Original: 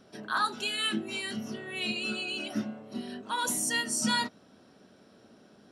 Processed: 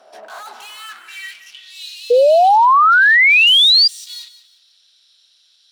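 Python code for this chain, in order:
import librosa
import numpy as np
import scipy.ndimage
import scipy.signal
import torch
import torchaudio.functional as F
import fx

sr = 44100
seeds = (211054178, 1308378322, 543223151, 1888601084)

y = fx.tube_stage(x, sr, drive_db=45.0, bias=0.55)
y = fx.filter_sweep_highpass(y, sr, from_hz=680.0, to_hz=3800.0, start_s=0.45, end_s=1.72, q=4.4)
y = fx.echo_feedback(y, sr, ms=175, feedback_pct=31, wet_db=-14)
y = fx.spec_paint(y, sr, seeds[0], shape='rise', start_s=2.1, length_s=1.78, low_hz=470.0, high_hz=4900.0, level_db=-19.0)
y = y * 10.0 ** (9.0 / 20.0)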